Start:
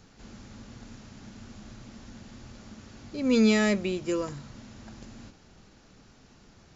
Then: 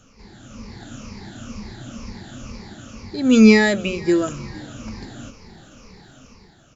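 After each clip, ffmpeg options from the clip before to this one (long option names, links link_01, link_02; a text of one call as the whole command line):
ffmpeg -i in.wav -filter_complex "[0:a]afftfilt=real='re*pow(10,14/40*sin(2*PI*(0.86*log(max(b,1)*sr/1024/100)/log(2)-(-2.1)*(pts-256)/sr)))':imag='im*pow(10,14/40*sin(2*PI*(0.86*log(max(b,1)*sr/1024/100)/log(2)-(-2.1)*(pts-256)/sr)))':win_size=1024:overlap=0.75,dynaudnorm=framelen=140:gausssize=9:maxgain=7.5dB,asplit=4[link_01][link_02][link_03][link_04];[link_02]adelay=461,afreqshift=-39,volume=-22dB[link_05];[link_03]adelay=922,afreqshift=-78,volume=-28.2dB[link_06];[link_04]adelay=1383,afreqshift=-117,volume=-34.4dB[link_07];[link_01][link_05][link_06][link_07]amix=inputs=4:normalize=0,volume=1dB" out.wav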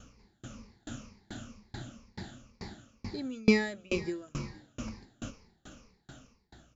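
ffmpeg -i in.wav -af "acompressor=threshold=-18dB:ratio=2.5,aeval=exprs='val(0)+0.00224*(sin(2*PI*60*n/s)+sin(2*PI*2*60*n/s)/2+sin(2*PI*3*60*n/s)/3+sin(2*PI*4*60*n/s)/4+sin(2*PI*5*60*n/s)/5)':channel_layout=same,aeval=exprs='val(0)*pow(10,-34*if(lt(mod(2.3*n/s,1),2*abs(2.3)/1000),1-mod(2.3*n/s,1)/(2*abs(2.3)/1000),(mod(2.3*n/s,1)-2*abs(2.3)/1000)/(1-2*abs(2.3)/1000))/20)':channel_layout=same" out.wav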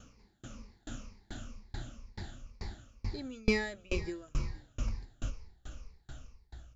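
ffmpeg -i in.wav -filter_complex "[0:a]asubboost=boost=11.5:cutoff=61,asplit=2[link_01][link_02];[link_02]asoftclip=type=tanh:threshold=-26.5dB,volume=-10.5dB[link_03];[link_01][link_03]amix=inputs=2:normalize=0,volume=-4dB" out.wav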